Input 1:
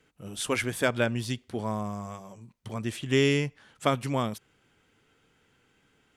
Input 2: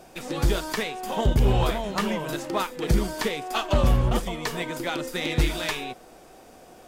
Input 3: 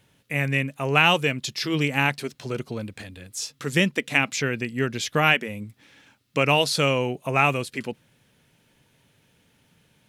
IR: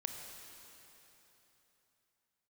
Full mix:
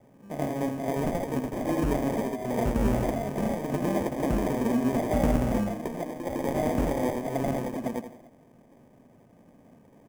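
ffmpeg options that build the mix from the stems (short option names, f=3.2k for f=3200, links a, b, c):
-filter_complex "[0:a]equalizer=f=280:w=3.3:g=-12.5,asplit=2[a][b];[b]afreqshift=-1.1[c];[a][c]amix=inputs=2:normalize=1,volume=-8dB[d];[1:a]adelay=1400,volume=-9.5dB,asplit=2[e][f];[f]volume=-14.5dB[g];[2:a]acompressor=threshold=-24dB:ratio=10,volume=0.5dB,asplit=2[h][i];[i]volume=-7.5dB[j];[d][h]amix=inputs=2:normalize=0,highpass=f=80:w=0.5412,highpass=f=80:w=1.3066,alimiter=level_in=5dB:limit=-24dB:level=0:latency=1:release=157,volume=-5dB,volume=0dB[k];[g][j]amix=inputs=2:normalize=0,aecho=0:1:82|164|246|328:1|0.31|0.0961|0.0298[l];[e][k][l]amix=inputs=3:normalize=0,acrusher=samples=32:mix=1:aa=0.000001,equalizer=f=250:t=o:w=0.67:g=11,equalizer=f=630:t=o:w=0.67:g=9,equalizer=f=4k:t=o:w=0.67:g=-10"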